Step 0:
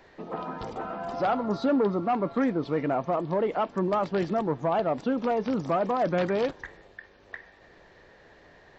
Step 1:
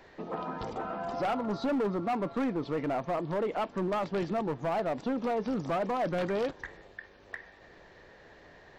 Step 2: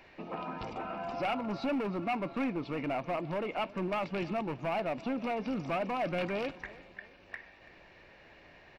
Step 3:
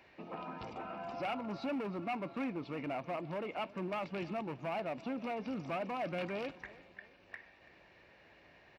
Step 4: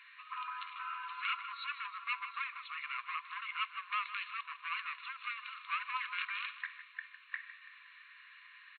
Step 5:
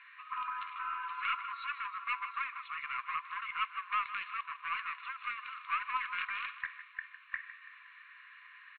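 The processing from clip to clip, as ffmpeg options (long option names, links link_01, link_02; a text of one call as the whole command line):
ffmpeg -i in.wav -filter_complex "[0:a]asplit=2[link_01][link_02];[link_02]acompressor=threshold=-34dB:ratio=6,volume=-1dB[link_03];[link_01][link_03]amix=inputs=2:normalize=0,asoftclip=type=hard:threshold=-20.5dB,volume=-5.5dB" out.wav
ffmpeg -i in.wav -af "superequalizer=7b=0.631:12b=2.82:15b=0.562,aecho=1:1:332|664|996:0.1|0.043|0.0185,volume=-2.5dB" out.wav
ffmpeg -i in.wav -af "highpass=55,volume=-5dB" out.wav
ffmpeg -i in.wav -af "afftfilt=real='re*between(b*sr/4096,1000,4300)':imag='im*between(b*sr/4096,1000,4300)':win_size=4096:overlap=0.75,aecho=1:1:156:0.224,volume=7.5dB" out.wav
ffmpeg -i in.wav -af "aeval=exprs='0.0944*(cos(1*acos(clip(val(0)/0.0944,-1,1)))-cos(1*PI/2))+0.000668*(cos(8*acos(clip(val(0)/0.0944,-1,1)))-cos(8*PI/2))':channel_layout=same,lowpass=2100,volume=4.5dB" out.wav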